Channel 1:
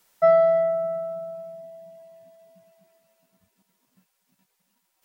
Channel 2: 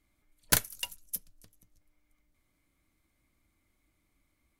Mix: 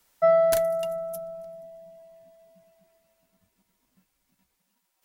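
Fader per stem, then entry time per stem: -2.5, -8.0 dB; 0.00, 0.00 s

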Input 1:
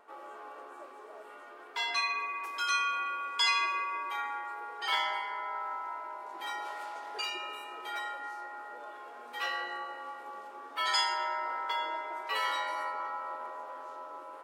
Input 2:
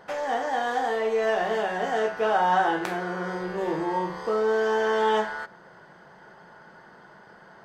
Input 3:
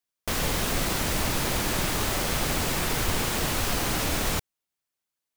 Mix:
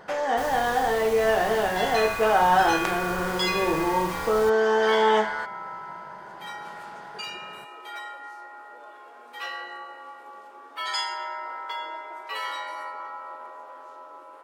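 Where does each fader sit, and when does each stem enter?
0.0, +2.5, -12.0 dB; 0.00, 0.00, 0.10 s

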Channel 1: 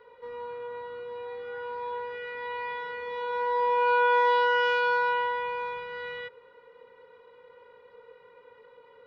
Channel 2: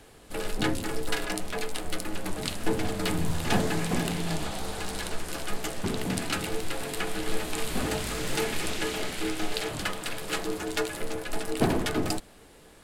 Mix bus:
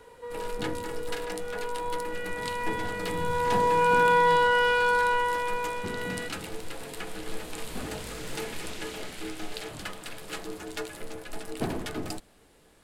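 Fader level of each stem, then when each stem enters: +1.5, -6.5 dB; 0.00, 0.00 s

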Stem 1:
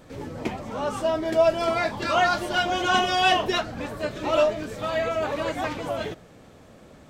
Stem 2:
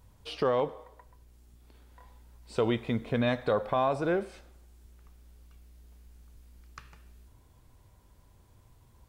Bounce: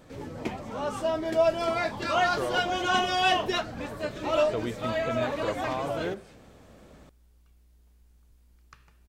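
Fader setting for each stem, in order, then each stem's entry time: -3.5, -5.5 dB; 0.00, 1.95 s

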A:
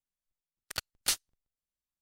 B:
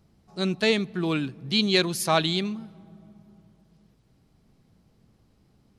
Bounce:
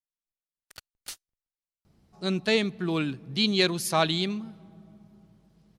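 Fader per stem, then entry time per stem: -11.0, -1.5 dB; 0.00, 1.85 s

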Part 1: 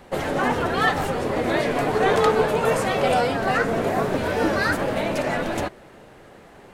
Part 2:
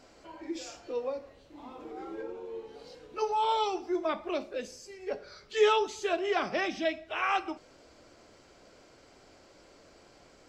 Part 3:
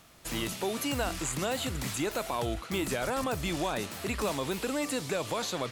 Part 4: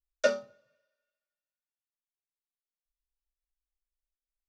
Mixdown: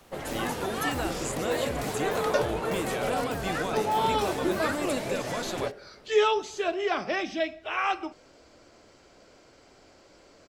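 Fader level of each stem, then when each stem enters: -10.5, +1.5, -2.0, -2.0 dB; 0.00, 0.55, 0.00, 2.10 s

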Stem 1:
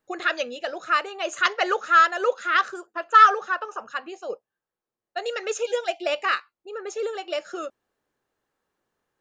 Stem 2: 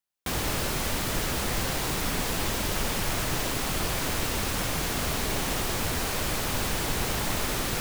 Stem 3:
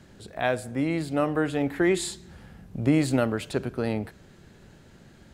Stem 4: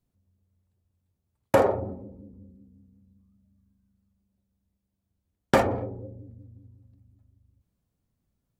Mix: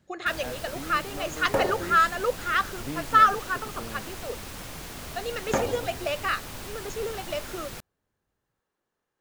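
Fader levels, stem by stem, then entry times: -4.0, -10.5, -14.5, -6.0 dB; 0.00, 0.00, 0.00, 0.00 s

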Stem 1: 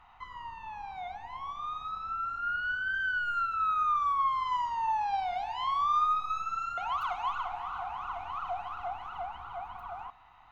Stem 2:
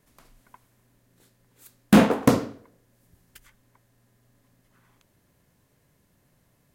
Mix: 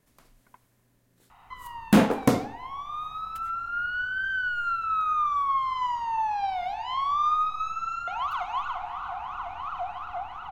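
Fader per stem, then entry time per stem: +2.5, -3.0 dB; 1.30, 0.00 s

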